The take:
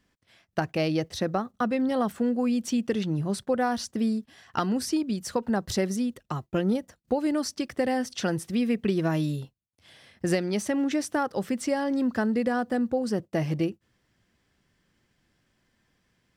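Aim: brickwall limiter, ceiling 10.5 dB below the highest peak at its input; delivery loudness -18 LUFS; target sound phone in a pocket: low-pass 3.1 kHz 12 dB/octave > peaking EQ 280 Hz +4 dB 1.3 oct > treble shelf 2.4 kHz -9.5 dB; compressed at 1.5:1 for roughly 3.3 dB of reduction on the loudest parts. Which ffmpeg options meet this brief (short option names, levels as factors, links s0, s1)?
-af "acompressor=threshold=0.0316:ratio=1.5,alimiter=level_in=1.19:limit=0.0631:level=0:latency=1,volume=0.841,lowpass=3100,equalizer=f=280:t=o:w=1.3:g=4,highshelf=f=2400:g=-9.5,volume=5.01"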